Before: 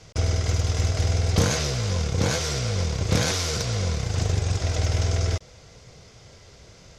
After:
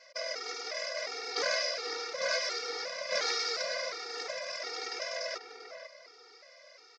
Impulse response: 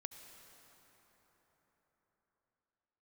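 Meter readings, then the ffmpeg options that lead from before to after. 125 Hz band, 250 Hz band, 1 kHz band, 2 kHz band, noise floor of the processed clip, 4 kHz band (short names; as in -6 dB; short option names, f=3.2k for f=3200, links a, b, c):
under -40 dB, -26.0 dB, -5.0 dB, -1.5 dB, -57 dBFS, -3.5 dB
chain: -filter_complex "[0:a]highpass=f=490:w=0.5412,highpass=f=490:w=1.3066,equalizer=f=580:t=q:w=4:g=6,equalizer=f=830:t=q:w=4:g=-7,equalizer=f=1.3k:t=q:w=4:g=4,equalizer=f=2k:t=q:w=4:g=7,equalizer=f=3.2k:t=q:w=4:g=-7,equalizer=f=5k:t=q:w=4:g=8,lowpass=f=5.3k:w=0.5412,lowpass=f=5.3k:w=1.3066,asplit=2[a][b];[b]adelay=490,lowpass=f=1.8k:p=1,volume=-6.5dB,asplit=2[c][d];[d]adelay=490,lowpass=f=1.8k:p=1,volume=0.27,asplit=2[e][f];[f]adelay=490,lowpass=f=1.8k:p=1,volume=0.27[g];[c][e][g]amix=inputs=3:normalize=0[h];[a][h]amix=inputs=2:normalize=0,afftfilt=real='re*gt(sin(2*PI*1.4*pts/sr)*(1-2*mod(floor(b*sr/1024/240),2)),0)':imag='im*gt(sin(2*PI*1.4*pts/sr)*(1-2*mod(floor(b*sr/1024/240),2)),0)':win_size=1024:overlap=0.75,volume=-2.5dB"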